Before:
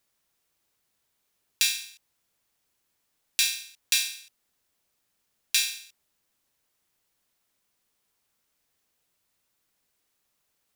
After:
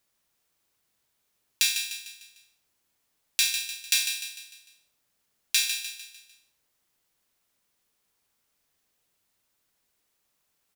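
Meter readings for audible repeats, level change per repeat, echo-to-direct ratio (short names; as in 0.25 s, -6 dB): 4, -7.0 dB, -8.5 dB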